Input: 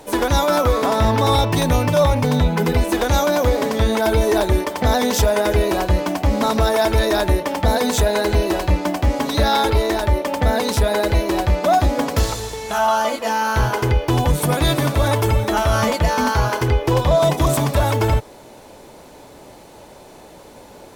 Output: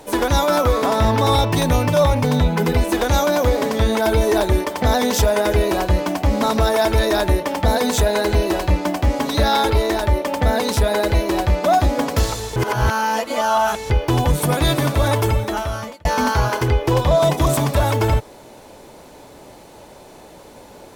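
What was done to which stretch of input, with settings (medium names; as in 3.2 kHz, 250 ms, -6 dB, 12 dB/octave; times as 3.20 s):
12.56–13.90 s: reverse
15.23–16.05 s: fade out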